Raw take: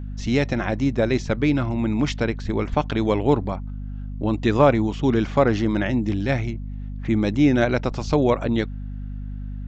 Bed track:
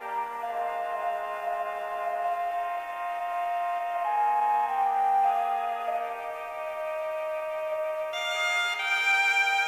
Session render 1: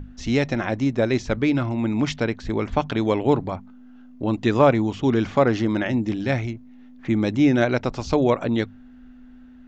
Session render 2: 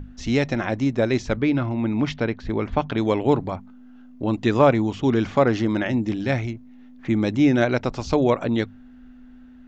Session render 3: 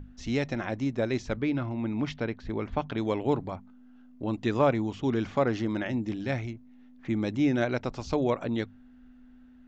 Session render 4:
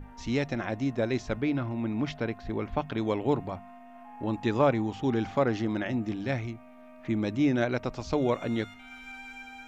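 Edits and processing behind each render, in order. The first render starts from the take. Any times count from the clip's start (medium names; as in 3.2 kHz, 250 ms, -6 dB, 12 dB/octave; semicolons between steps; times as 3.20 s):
hum notches 50/100/150/200 Hz
1.37–2.98 s: distance through air 120 m
trim -7.5 dB
add bed track -21 dB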